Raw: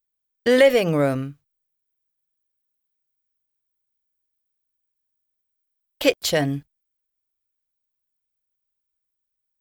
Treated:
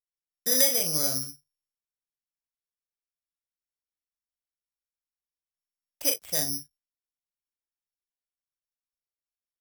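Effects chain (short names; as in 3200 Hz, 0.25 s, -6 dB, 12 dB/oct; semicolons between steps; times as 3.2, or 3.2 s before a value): bell 400 Hz -4 dB 0.77 oct; early reflections 39 ms -5.5 dB, 58 ms -15.5 dB; careless resampling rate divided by 8×, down filtered, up zero stuff; gain -15 dB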